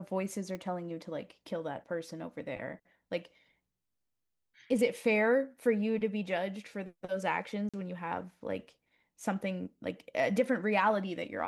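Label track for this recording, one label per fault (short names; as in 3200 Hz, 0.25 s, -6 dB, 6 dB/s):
0.550000	0.550000	pop -26 dBFS
7.690000	7.740000	gap 46 ms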